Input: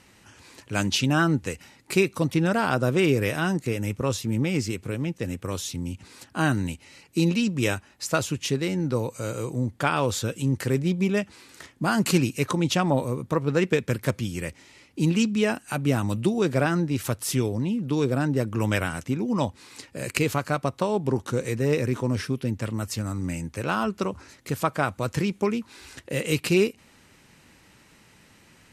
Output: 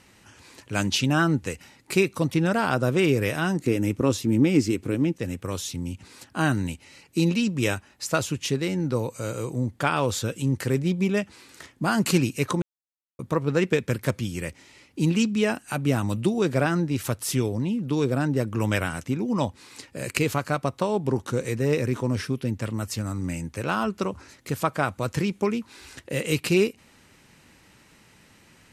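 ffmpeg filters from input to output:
ffmpeg -i in.wav -filter_complex "[0:a]asettb=1/sr,asplit=3[link_01][link_02][link_03];[link_01]atrim=end=3.594[link_04];[link_02]atrim=start=3.59:end=5.16,asetpts=PTS-STARTPTS,afade=type=in:duration=0.004:curve=qsin,afade=type=out:start_time=1.566:duration=0.004:curve=qsin,equalizer=frequency=300:width_type=o:width=0.77:gain=10[link_05];[link_03]atrim=start=5.156[link_06];[link_04][link_05]acrossfade=duration=0.004:curve1=hsin:curve2=qsin[link_07];[link_07][link_06]acrossfade=duration=0.004:curve1=qsin:curve2=hsin,asplit=3[link_08][link_09][link_10];[link_08]atrim=end=12.62,asetpts=PTS-STARTPTS,afade=type=out:start_time=12.616:duration=0.004:curve=hsin[link_11];[link_09]atrim=start=12.62:end=13.19,asetpts=PTS-STARTPTS,volume=0[link_12];[link_10]atrim=start=13.19,asetpts=PTS-STARTPTS,afade=type=in:duration=0.004:curve=hsin[link_13];[link_11][link_12][link_13]concat=n=3:v=0:a=1" out.wav

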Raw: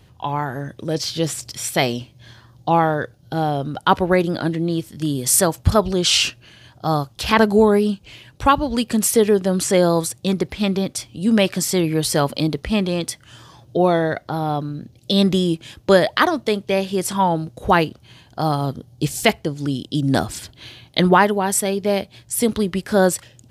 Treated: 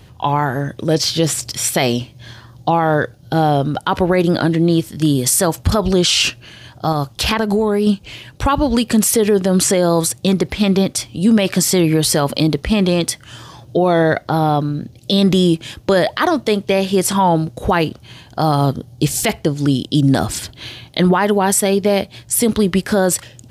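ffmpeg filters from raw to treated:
ffmpeg -i in.wav -filter_complex "[0:a]asettb=1/sr,asplit=3[link_01][link_02][link_03];[link_01]atrim=end=6.924[link_04];[link_02]atrim=start=6.92:end=7.87,asetpts=PTS-STARTPTS,afade=type=in:duration=0.004:curve=qsin,afade=type=out:start_time=0.946:duration=0.004:curve=qsin,acompressor=threshold=-19dB:ratio=10:attack=3.2:release=140:knee=1:detection=peak[link_05];[link_03]atrim=start=7.866[link_06];[link_04][link_05]acrossfade=duration=0.004:curve1=hsin:curve2=qsin[link_07];[link_07][link_06]acrossfade=duration=0.004:curve1=qsin:curve2=hsin,alimiter=level_in=12dB:limit=-1dB:release=50:level=0:latency=1,volume=-4.5dB" out.wav

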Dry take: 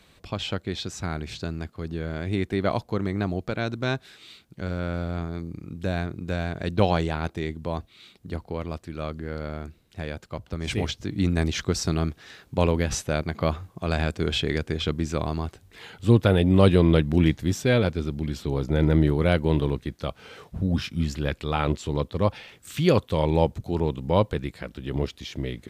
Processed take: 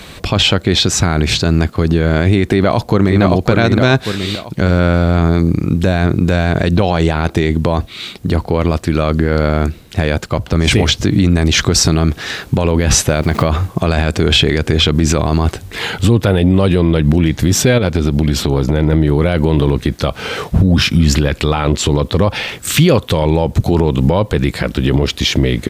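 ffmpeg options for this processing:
ffmpeg -i in.wav -filter_complex "[0:a]asplit=2[link_01][link_02];[link_02]afade=type=in:start_time=2.47:duration=0.01,afade=type=out:start_time=3.21:duration=0.01,aecho=0:1:570|1140|1710|2280:0.473151|0.141945|0.0425836|0.0127751[link_03];[link_01][link_03]amix=inputs=2:normalize=0,asettb=1/sr,asplit=3[link_04][link_05][link_06];[link_04]atrim=end=13.084[link_07];[link_05]atrim=start=13.08:end=13.48,asetpts=PTS-STARTPTS,afade=type=in:duration=0.004:curve=qsin,afade=type=out:start_time=0.396:duration=0.004:curve=qsin,aeval=exprs='val(0)*gte(abs(val(0)),0.00447)':channel_layout=same[link_08];[link_06]atrim=start=13.476[link_09];[link_07][link_08]acrossfade=duration=0.004:curve1=hsin:curve2=qsin[link_10];[link_10][link_09]acrossfade=duration=0.004:curve1=qsin:curve2=hsin,asplit=3[link_11][link_12][link_13];[link_11]afade=type=out:start_time=17.77:duration=0.02[link_14];[link_12]acompressor=threshold=-31dB:ratio=6:attack=3.2:release=140:knee=1:detection=peak,afade=type=in:start_time=17.77:duration=0.02,afade=type=out:start_time=18.92:duration=0.02[link_15];[link_13]afade=type=in:start_time=18.92:duration=0.02[link_16];[link_14][link_15][link_16]amix=inputs=3:normalize=0,acompressor=threshold=-22dB:ratio=6,alimiter=level_in=24dB:limit=-1dB:release=50:level=0:latency=1,volume=-1dB" out.wav

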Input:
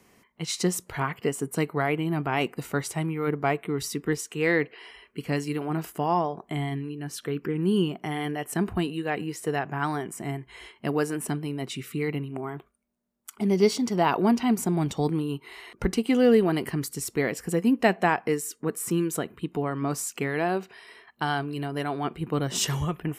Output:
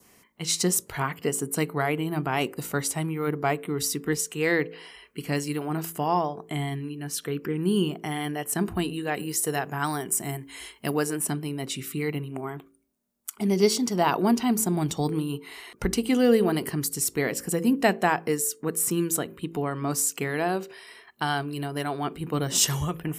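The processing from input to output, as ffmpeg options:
ffmpeg -i in.wav -filter_complex "[0:a]asettb=1/sr,asplit=3[link_01][link_02][link_03];[link_01]atrim=end=9.144[link_04];[link_02]atrim=start=9.14:end=10.94,asetpts=PTS-STARTPTS,afade=type=in:duration=0.004:curve=qsin,afade=type=out:start_time=1.796:duration=0.004:curve=qsin,aemphasis=mode=production:type=cd[link_05];[link_03]atrim=start=10.936[link_06];[link_04][link_05]acrossfade=duration=0.004:curve1=hsin:curve2=qsin[link_07];[link_07][link_06]acrossfade=duration=0.004:curve1=qsin:curve2=hsin,highshelf=frequency=4900:gain=9.5,bandreject=frequency=55.2:width_type=h:width=4,bandreject=frequency=110.4:width_type=h:width=4,bandreject=frequency=165.6:width_type=h:width=4,bandreject=frequency=220.8:width_type=h:width=4,bandreject=frequency=276:width_type=h:width=4,bandreject=frequency=331.2:width_type=h:width=4,bandreject=frequency=386.4:width_type=h:width=4,bandreject=frequency=441.6:width_type=h:width=4,bandreject=frequency=496.8:width_type=h:width=4,bandreject=frequency=552:width_type=h:width=4,adynamicequalizer=threshold=0.00501:dfrequency=2300:dqfactor=2.2:tfrequency=2300:tqfactor=2.2:attack=5:release=100:ratio=0.375:range=2:mode=cutabove:tftype=bell" out.wav

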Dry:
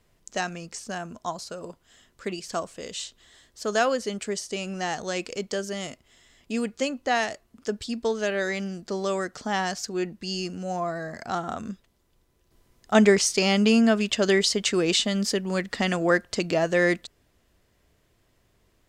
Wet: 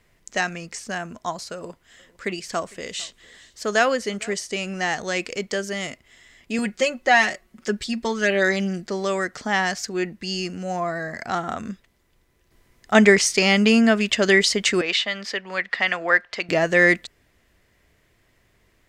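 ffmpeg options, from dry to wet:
ffmpeg -i in.wav -filter_complex "[0:a]asettb=1/sr,asplit=3[link_01][link_02][link_03];[link_01]atrim=end=1.544[link_04];[link_02]atrim=start=1.54:end=4.34,asetpts=PTS-STARTPTS,afade=type=in:duration=0.004:curve=qsin,afade=type=out:start_time=2.796:duration=0.004:curve=qsin,aecho=1:1:454:0.0668,atrim=end_sample=123480[link_05];[link_03]atrim=start=4.336[link_06];[link_04][link_05]acrossfade=duration=0.004:curve1=hsin:curve2=qsin[link_07];[link_07][link_06]acrossfade=duration=0.004:curve1=qsin:curve2=hsin,asettb=1/sr,asplit=3[link_08][link_09][link_10];[link_08]atrim=end=6.584[link_11];[link_09]atrim=start=6.58:end=8.86,asetpts=PTS-STARTPTS,afade=type=in:duration=0.004:curve=qsin,afade=type=out:start_time=2.276:duration=0.004:curve=qsin,aecho=1:1:5.4:0.74,atrim=end_sample=100548[link_12];[link_10]atrim=start=8.856[link_13];[link_11][link_12]acrossfade=duration=0.004:curve1=hsin:curve2=qsin[link_14];[link_14][link_13]acrossfade=duration=0.004:curve1=qsin:curve2=hsin,asettb=1/sr,asplit=3[link_15][link_16][link_17];[link_15]atrim=end=14.814[link_18];[link_16]atrim=start=14.81:end=16.49,asetpts=PTS-STARTPTS,afade=type=in:duration=0.004:curve=qsin,afade=type=out:start_time=1.676:duration=0.004:curve=qsin,acrossover=split=550 4700:gain=0.158 1 0.1[link_19][link_20][link_21];[link_19][link_20][link_21]amix=inputs=3:normalize=0[link_22];[link_17]atrim=start=16.486[link_23];[link_18][link_22]acrossfade=duration=0.004:curve1=hsin:curve2=qsin[link_24];[link_24][link_23]acrossfade=duration=0.004:curve1=qsin:curve2=hsin,equalizer=frequency=2000:width_type=o:width=0.69:gain=8,volume=2.5dB" out.wav

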